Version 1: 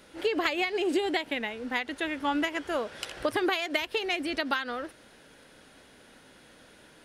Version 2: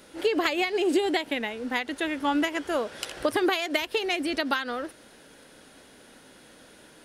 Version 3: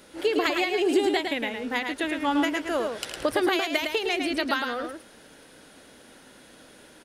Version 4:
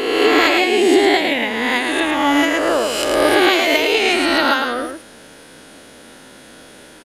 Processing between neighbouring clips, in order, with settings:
drawn EQ curve 110 Hz 0 dB, 280 Hz +4 dB, 2,300 Hz +1 dB, 9,800 Hz +6 dB
single-tap delay 108 ms −5.5 dB
peak hold with a rise ahead of every peak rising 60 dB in 1.48 s; downsampling to 32,000 Hz; level +6.5 dB

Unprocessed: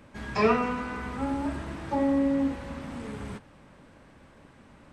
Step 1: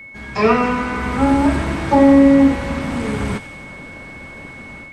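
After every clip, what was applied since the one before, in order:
automatic gain control gain up to 14 dB
steady tone 2,200 Hz −37 dBFS
delay with a high-pass on its return 88 ms, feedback 70%, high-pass 2,000 Hz, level −11.5 dB
level +2 dB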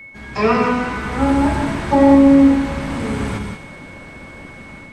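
reverb whose tail is shaped and stops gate 210 ms rising, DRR 5 dB
level −1.5 dB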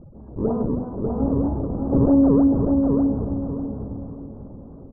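sample-and-hold swept by an LFO 36×, swing 160% 3.1 Hz
Gaussian smoothing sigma 12 samples
on a send: repeating echo 595 ms, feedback 32%, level −4 dB
on the sum: level −4.5 dB

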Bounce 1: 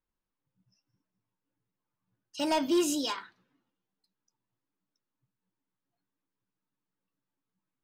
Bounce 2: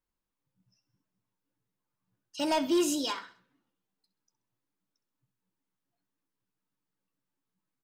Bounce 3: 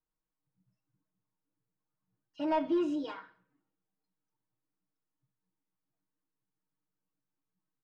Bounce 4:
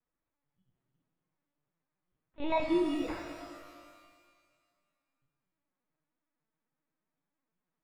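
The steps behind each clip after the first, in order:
repeating echo 65 ms, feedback 41%, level −16 dB
low-pass filter 1,700 Hz 12 dB per octave; comb filter 6.4 ms, depth 96%; level −6.5 dB
decimation without filtering 14×; linear-prediction vocoder at 8 kHz pitch kept; reverb with rising layers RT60 1.8 s, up +12 semitones, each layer −8 dB, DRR 4 dB

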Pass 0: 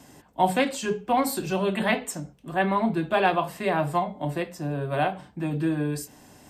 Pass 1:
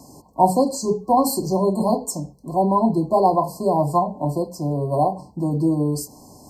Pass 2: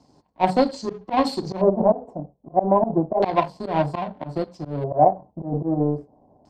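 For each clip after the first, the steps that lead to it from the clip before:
brick-wall band-stop 1,100–4,100 Hz; level +6 dB
power curve on the samples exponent 1.4; volume swells 111 ms; auto-filter low-pass square 0.31 Hz 680–3,700 Hz; level +4 dB

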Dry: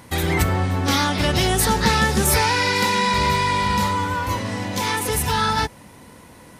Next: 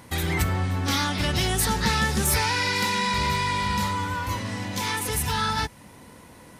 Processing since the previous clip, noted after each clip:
dynamic equaliser 520 Hz, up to −5 dB, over −36 dBFS, Q 0.73
in parallel at −8.5 dB: soft clipping −19 dBFS, distortion −12 dB
on the sum: level −5.5 dB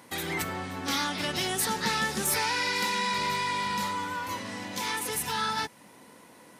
high-pass filter 220 Hz 12 dB per octave
level −3.5 dB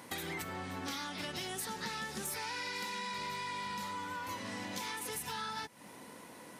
downward compressor 6 to 1, threshold −39 dBFS, peak gain reduction 14.5 dB
level +1 dB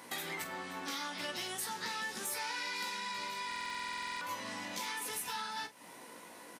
high-pass filter 370 Hz 6 dB per octave
on a send: ambience of single reflections 17 ms −5 dB, 46 ms −11 dB
on the sum: buffer that repeats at 0:03.47, samples 2,048, times 15

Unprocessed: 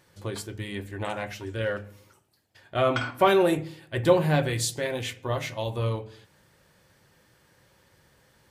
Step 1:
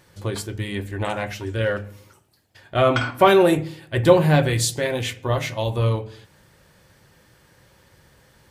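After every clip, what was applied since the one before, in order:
low-shelf EQ 93 Hz +5.5 dB
level +5.5 dB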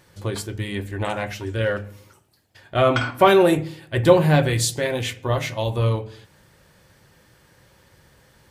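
no processing that can be heard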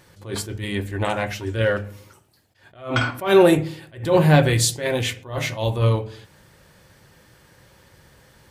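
level that may rise only so fast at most 140 dB per second
level +2.5 dB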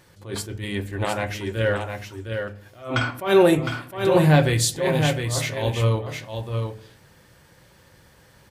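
single-tap delay 710 ms −6 dB
level −2 dB

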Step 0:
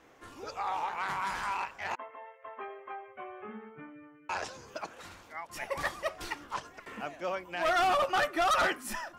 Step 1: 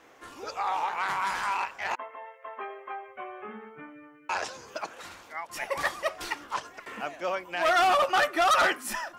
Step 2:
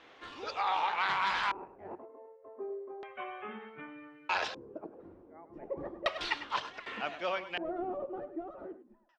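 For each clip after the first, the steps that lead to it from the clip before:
low-shelf EQ 220 Hz −10 dB; level +5 dB
fade-out on the ending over 2.29 s; single-tap delay 101 ms −13 dB; auto-filter low-pass square 0.33 Hz 370–3,700 Hz; level −2.5 dB

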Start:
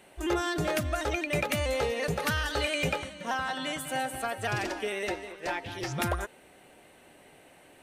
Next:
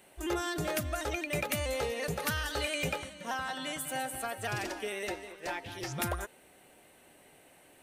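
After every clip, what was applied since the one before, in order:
high-shelf EQ 8,400 Hz +10 dB
level −4.5 dB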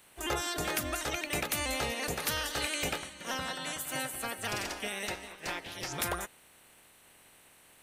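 ceiling on every frequency bin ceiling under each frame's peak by 15 dB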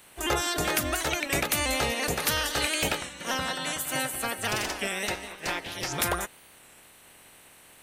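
wow of a warped record 33 1/3 rpm, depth 100 cents
level +6 dB

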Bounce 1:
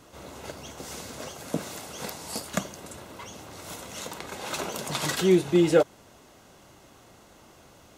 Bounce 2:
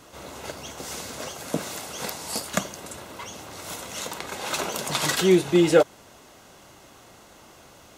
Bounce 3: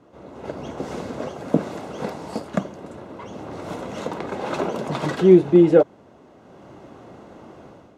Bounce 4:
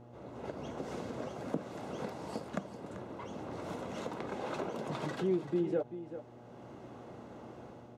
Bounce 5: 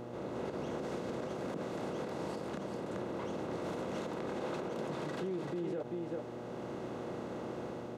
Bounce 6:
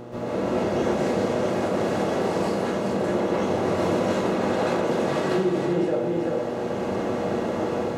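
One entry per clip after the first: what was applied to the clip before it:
low-shelf EQ 470 Hz −4.5 dB; level +5 dB
automatic gain control gain up to 11 dB; resonant band-pass 260 Hz, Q 0.6; level +1 dB
downward compressor 2 to 1, threshold −32 dBFS, peak gain reduction 13.5 dB; hum with harmonics 120 Hz, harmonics 7, −48 dBFS −4 dB per octave; single-tap delay 388 ms −12 dB; level −7 dB
compressor on every frequency bin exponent 0.6; brickwall limiter −28.5 dBFS, peak gain reduction 11 dB; level −1.5 dB
dense smooth reverb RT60 0.67 s, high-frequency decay 0.8×, pre-delay 115 ms, DRR −9.5 dB; level +5.5 dB

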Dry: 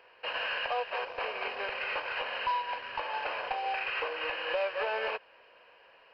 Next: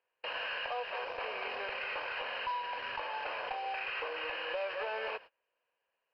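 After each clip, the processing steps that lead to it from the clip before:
noise gate −46 dBFS, range −28 dB
in parallel at −2 dB: compressor whose output falls as the input rises −41 dBFS, ratio −1
on the sum: level −6.5 dB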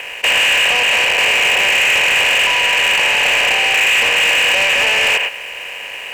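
compressor on every frequency bin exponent 0.4
flat-topped bell 2,400 Hz +15 dB 1 octave
leveller curve on the samples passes 3
level +2 dB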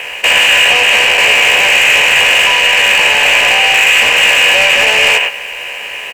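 double-tracking delay 14 ms −4.5 dB
level +3.5 dB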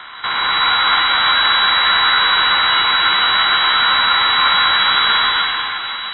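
gain on one half-wave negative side −7 dB
convolution reverb RT60 4.3 s, pre-delay 118 ms, DRR −4 dB
voice inversion scrambler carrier 3,900 Hz
level −9 dB

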